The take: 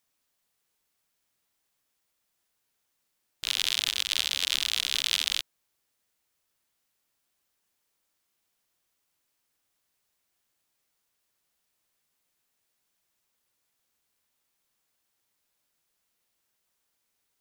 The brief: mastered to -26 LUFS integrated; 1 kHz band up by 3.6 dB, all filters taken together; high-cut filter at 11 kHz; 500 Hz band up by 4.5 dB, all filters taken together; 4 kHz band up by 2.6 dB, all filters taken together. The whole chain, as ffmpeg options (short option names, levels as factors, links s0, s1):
-af "lowpass=11000,equalizer=f=500:t=o:g=4.5,equalizer=f=1000:t=o:g=3.5,equalizer=f=4000:t=o:g=3,volume=0.794"